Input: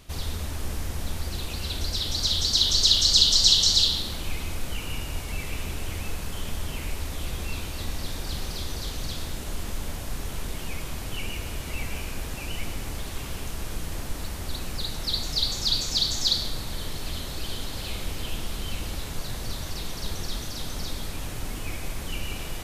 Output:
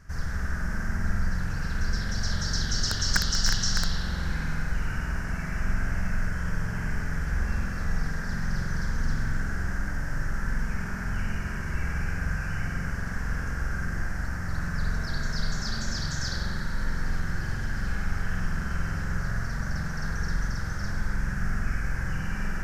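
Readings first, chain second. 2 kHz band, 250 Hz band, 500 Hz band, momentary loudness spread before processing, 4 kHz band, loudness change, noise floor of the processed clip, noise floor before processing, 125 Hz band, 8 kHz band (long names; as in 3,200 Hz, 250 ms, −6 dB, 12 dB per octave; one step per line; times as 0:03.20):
+7.5 dB, +4.5 dB, −3.5 dB, 17 LU, −12.0 dB, −4.0 dB, −32 dBFS, −35 dBFS, +4.5 dB, −6.0 dB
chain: spring reverb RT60 2.2 s, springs 45 ms, chirp 50 ms, DRR −3.5 dB
wrap-around overflow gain 5.5 dB
drawn EQ curve 120 Hz 0 dB, 190 Hz +3 dB, 290 Hz −10 dB, 710 Hz −8 dB, 1,100 Hz −5 dB, 1,600 Hz +10 dB, 2,400 Hz −13 dB, 3,700 Hz −24 dB, 5,400 Hz −3 dB, 9,900 Hz −16 dB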